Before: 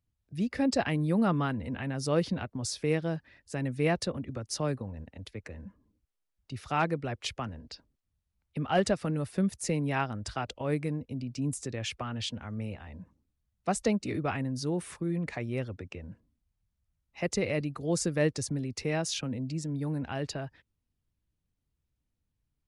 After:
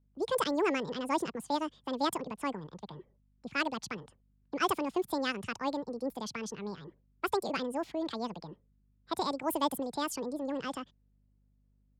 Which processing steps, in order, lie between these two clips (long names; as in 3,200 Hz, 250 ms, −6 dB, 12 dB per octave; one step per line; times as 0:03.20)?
change of speed 1.89×
low-pass that shuts in the quiet parts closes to 2,300 Hz, open at −24.5 dBFS
mains hum 50 Hz, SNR 34 dB
level −2.5 dB